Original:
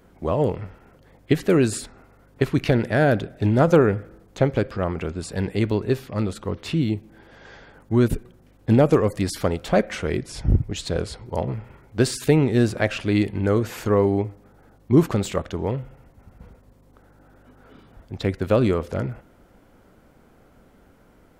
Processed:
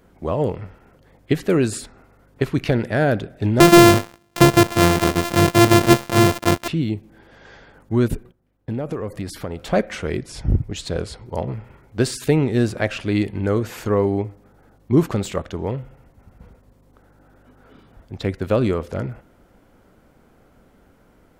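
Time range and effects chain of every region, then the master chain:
0:03.60–0:06.68: samples sorted by size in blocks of 128 samples + high-pass filter 99 Hz + leveller curve on the samples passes 3
0:08.15–0:09.60: noise gate −49 dBFS, range −14 dB + parametric band 6,700 Hz −6 dB 1.9 octaves + downward compressor 4 to 1, threshold −24 dBFS
whole clip: no processing

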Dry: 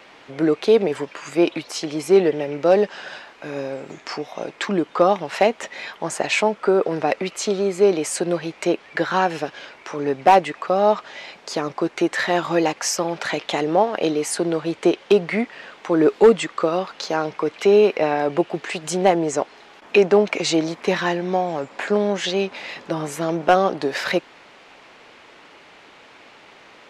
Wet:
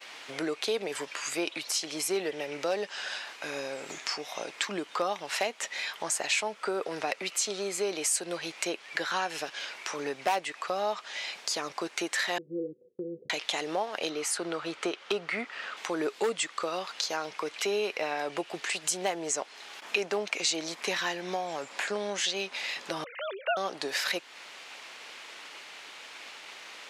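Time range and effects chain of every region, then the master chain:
0:12.38–0:13.30: Chebyshev low-pass with heavy ripple 510 Hz, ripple 9 dB + parametric band 250 Hz +5 dB 0.79 octaves
0:14.09–0:15.77: low-pass filter 3,400 Hz 6 dB per octave + parametric band 1,300 Hz +8 dB 0.3 octaves
0:23.04–0:23.57: three sine waves on the formant tracks + spectral tilt +4 dB per octave + one half of a high-frequency compander decoder only
whole clip: downward expander −44 dBFS; spectral tilt +4 dB per octave; downward compressor 2 to 1, threshold −36 dBFS

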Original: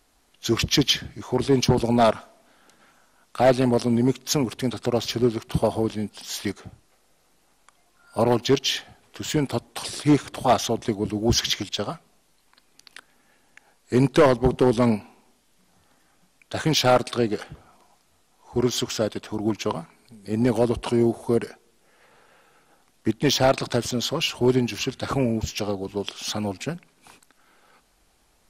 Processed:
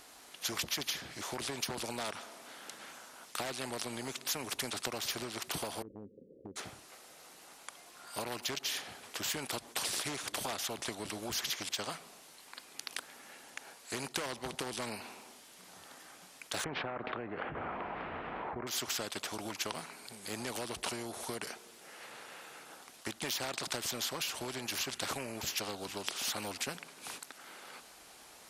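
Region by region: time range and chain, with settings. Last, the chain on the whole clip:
0:05.82–0:06.56: Chebyshev low-pass filter 530 Hz, order 8 + downward compressor 3 to 1, threshold −35 dBFS
0:16.64–0:18.67: Bessel low-pass filter 1,100 Hz, order 6 + envelope flattener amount 70%
whole clip: high-pass filter 490 Hz 6 dB per octave; downward compressor, threshold −29 dBFS; every bin compressed towards the loudest bin 2 to 1

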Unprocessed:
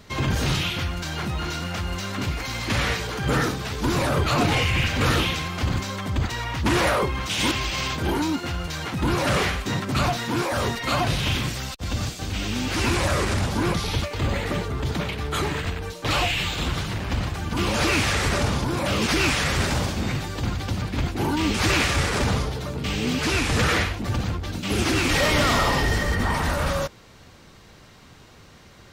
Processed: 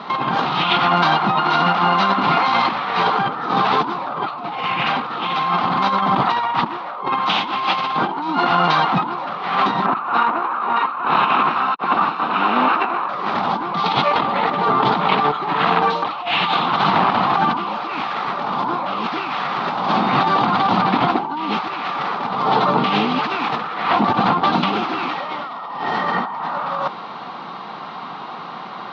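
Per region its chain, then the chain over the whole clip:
0:09.86–0:13.09: lower of the sound and its delayed copy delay 0.75 ms + three-way crossover with the lows and the highs turned down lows −15 dB, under 270 Hz, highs −20 dB, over 2,600 Hz
whole clip: elliptic band-pass filter 180–3,900 Hz, stop band 40 dB; flat-topped bell 970 Hz +13 dB 1.1 octaves; compressor whose output falls as the input rises −28 dBFS, ratio −1; level +7.5 dB

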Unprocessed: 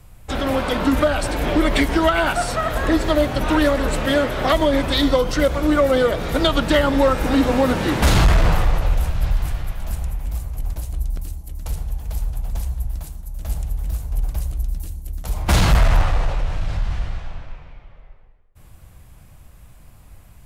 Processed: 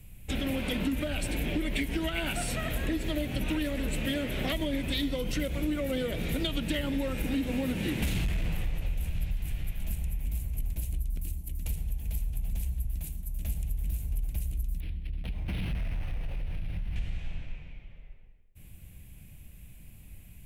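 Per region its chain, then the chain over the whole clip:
0:14.80–0:16.96: parametric band 8,200 Hz −12.5 dB 0.46 octaves + downward compressor 5 to 1, threshold −25 dBFS + linearly interpolated sample-rate reduction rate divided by 6×
whole clip: drawn EQ curve 130 Hz 0 dB, 190 Hz +4 dB, 1,200 Hz −15 dB, 2,500 Hz +5 dB, 4,900 Hz −6 dB, 12,000 Hz +5 dB; downward compressor, threshold −23 dBFS; level −4 dB

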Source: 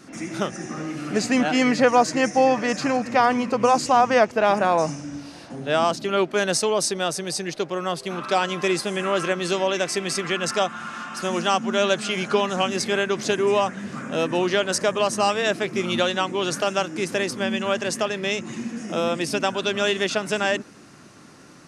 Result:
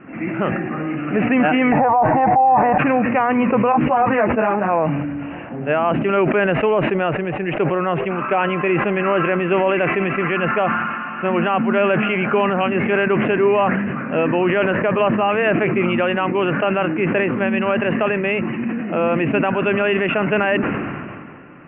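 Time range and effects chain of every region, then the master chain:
0:01.72–0:02.78: drawn EQ curve 110 Hz 0 dB, 190 Hz −14 dB, 560 Hz −7 dB, 820 Hz +12 dB, 1,200 Hz −7 dB, 1,800 Hz −13 dB, 4,200 Hz −26 dB + envelope flattener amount 70%
0:03.72–0:04.70: high-frequency loss of the air 240 metres + string-ensemble chorus
whole clip: Butterworth low-pass 2,800 Hz 96 dB per octave; boost into a limiter +13 dB; level that may fall only so fast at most 28 dB per second; level −7 dB

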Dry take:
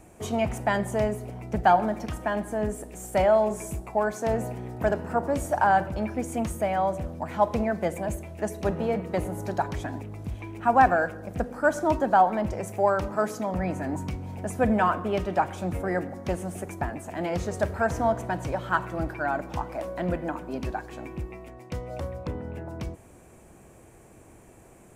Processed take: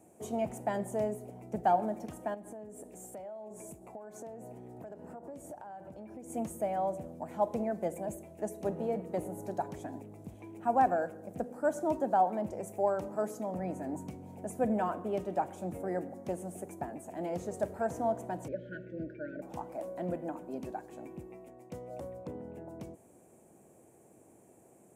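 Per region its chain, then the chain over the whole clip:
0:02.34–0:06.30: high-shelf EQ 8,600 Hz −4 dB + downward compressor 16 to 1, threshold −34 dBFS
0:18.48–0:19.42: linear-phase brick-wall band-stop 640–1,400 Hz + high-frequency loss of the air 280 metres
whole clip: high-pass filter 170 Hz 12 dB per octave; flat-topped bell 2,400 Hz −9.5 dB 2.7 octaves; level −6 dB

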